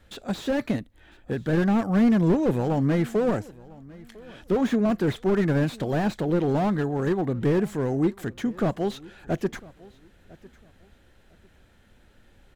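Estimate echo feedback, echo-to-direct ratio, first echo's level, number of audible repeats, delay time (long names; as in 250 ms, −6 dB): 25%, −22.0 dB, −22.5 dB, 2, 1,002 ms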